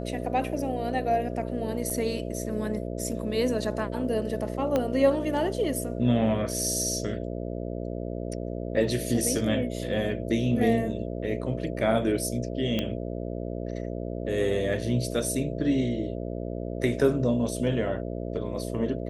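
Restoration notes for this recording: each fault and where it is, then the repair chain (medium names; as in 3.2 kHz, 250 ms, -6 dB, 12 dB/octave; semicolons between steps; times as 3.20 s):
buzz 60 Hz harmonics 11 -33 dBFS
1.90 s: dropout 4.8 ms
4.76 s: pop -13 dBFS
12.79 s: pop -14 dBFS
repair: de-click; de-hum 60 Hz, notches 11; interpolate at 1.90 s, 4.8 ms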